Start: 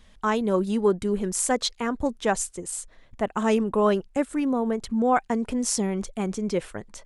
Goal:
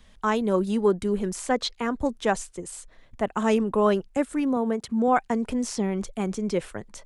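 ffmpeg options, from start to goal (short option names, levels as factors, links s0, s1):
-filter_complex "[0:a]asettb=1/sr,asplit=3[s0][s1][s2];[s0]atrim=end=4.564[s3];[s1]atrim=start=4.56:end=5.08,asetpts=PTS-STARTPTS,afade=t=in:d=0.004:c=qsin,afade=t=out:st=0.516:d=0.004:c=qsin,highpass=89[s4];[s2]atrim=start=5.076[s5];[s3][s4]acrossfade=d=0.004:c1=hsin:c2=qsin[s6];[s6][s5]acrossfade=d=0.004:c1=qsin:c2=hsin,acrossover=split=130|4700[s7][s8][s9];[s9]acompressor=threshold=0.0112:ratio=6[s10];[s7][s8][s10]amix=inputs=3:normalize=0"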